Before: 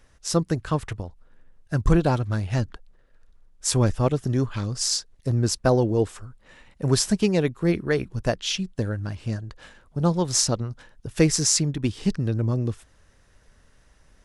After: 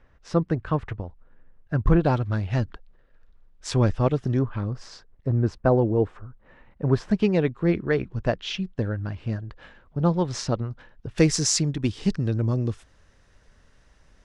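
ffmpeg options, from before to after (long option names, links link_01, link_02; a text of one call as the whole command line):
ffmpeg -i in.wav -af "asetnsamples=nb_out_samples=441:pad=0,asendcmd='2.05 lowpass f 3800;4.39 lowpass f 1600;7.11 lowpass f 3000;11.18 lowpass f 7000',lowpass=2200" out.wav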